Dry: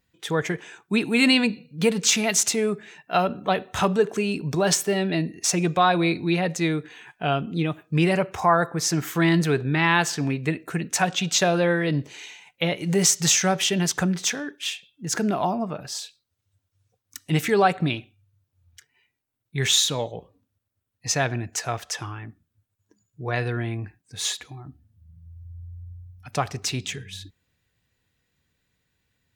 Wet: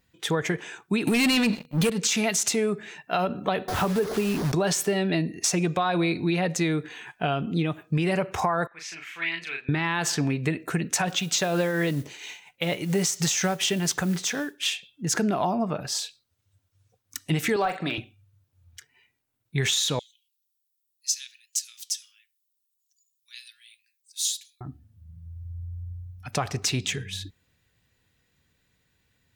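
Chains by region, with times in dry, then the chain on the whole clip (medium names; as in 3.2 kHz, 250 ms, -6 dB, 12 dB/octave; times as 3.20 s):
1.07–1.90 s: treble shelf 7.5 kHz +11.5 dB + waveshaping leveller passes 3
3.68–4.52 s: one-bit delta coder 32 kbps, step -27.5 dBFS + low-pass 1.6 kHz 6 dB/octave + word length cut 6-bit, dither none
8.67–9.69 s: band-pass filter 2.4 kHz, Q 4.1 + doubling 36 ms -3.5 dB
11.08–14.63 s: tremolo triangle 4.3 Hz, depth 60% + modulation noise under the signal 23 dB
17.56–17.98 s: frequency weighting A + de-esser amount 95% + doubling 41 ms -10.5 dB
19.99–24.61 s: inverse Chebyshev high-pass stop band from 780 Hz, stop band 70 dB + treble shelf 7.5 kHz +9.5 dB + flange 1.3 Hz, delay 5.9 ms, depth 3.7 ms, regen +85%
whole clip: peak limiter -13 dBFS; compression 4:1, threshold -25 dBFS; trim +3.5 dB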